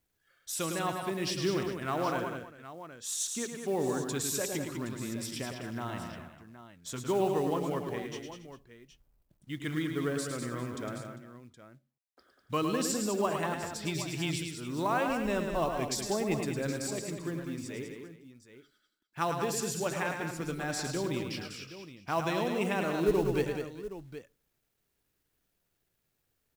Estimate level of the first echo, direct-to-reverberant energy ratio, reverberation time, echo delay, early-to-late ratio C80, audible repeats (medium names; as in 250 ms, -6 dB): -6.5 dB, no reverb, no reverb, 107 ms, no reverb, 5